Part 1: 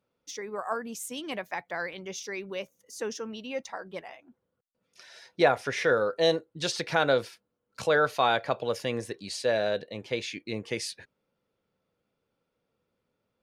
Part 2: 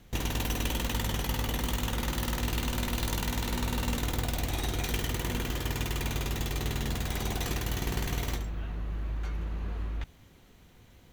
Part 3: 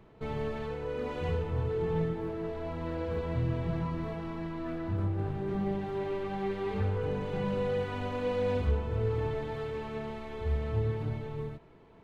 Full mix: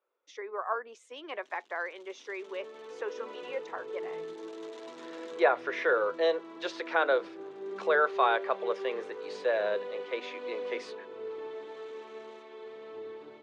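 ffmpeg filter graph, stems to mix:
-filter_complex "[0:a]acrossover=split=440 2400:gain=0.141 1 0.126[s0][s1][s2];[s0][s1][s2]amix=inputs=3:normalize=0,volume=1,asplit=2[s3][s4];[1:a]acompressor=mode=upward:threshold=0.0178:ratio=2.5,aphaser=in_gain=1:out_gain=1:delay=3.7:decay=0.34:speed=0.52:type=triangular,aeval=exprs='(tanh(70.8*val(0)+0.6)-tanh(0.6))/70.8':c=same,adelay=1300,volume=0.355[s5];[2:a]dynaudnorm=f=120:g=9:m=3.55,adelay=2200,volume=0.119[s6];[s4]apad=whole_len=547906[s7];[s5][s7]sidechaincompress=threshold=0.00447:ratio=3:attack=8.6:release=970[s8];[s3][s8][s6]amix=inputs=3:normalize=0,highpass=f=310:w=0.5412,highpass=f=310:w=1.3066,equalizer=f=380:t=q:w=4:g=6,equalizer=f=770:t=q:w=4:g=-3,equalizer=f=1100:t=q:w=4:g=3,equalizer=f=3600:t=q:w=4:g=4,lowpass=f=7300:w=0.5412,lowpass=f=7300:w=1.3066"

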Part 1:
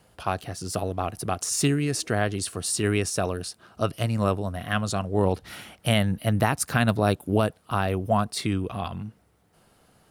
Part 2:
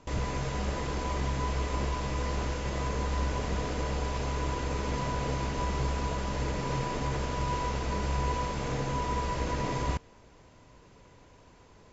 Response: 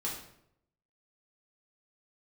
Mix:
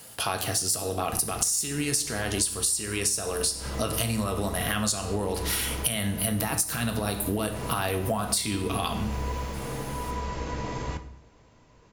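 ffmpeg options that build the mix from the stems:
-filter_complex "[0:a]lowshelf=f=78:g=-10.5,alimiter=limit=0.119:level=0:latency=1:release=31,crystalizer=i=4.5:c=0,volume=1.19,asplit=3[s0][s1][s2];[s1]volume=0.708[s3];[1:a]adelay=1000,volume=0.631,asplit=2[s4][s5];[s5]volume=0.355[s6];[s2]apad=whole_len=570206[s7];[s4][s7]sidechaincompress=threshold=0.0224:ratio=8:attack=16:release=130[s8];[2:a]atrim=start_sample=2205[s9];[s3][s6]amix=inputs=2:normalize=0[s10];[s10][s9]afir=irnorm=-1:irlink=0[s11];[s0][s8][s11]amix=inputs=3:normalize=0,acompressor=threshold=0.0708:ratio=16"

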